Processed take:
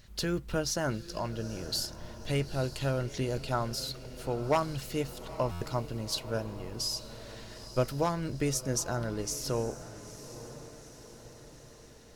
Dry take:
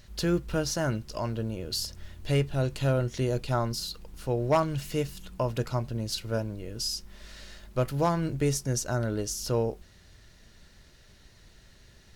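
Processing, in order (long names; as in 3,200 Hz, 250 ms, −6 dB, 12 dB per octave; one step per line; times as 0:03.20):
harmonic and percussive parts rebalanced harmonic −6 dB
feedback delay with all-pass diffusion 891 ms, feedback 54%, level −14 dB
buffer that repeats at 0:05.51, samples 512, times 8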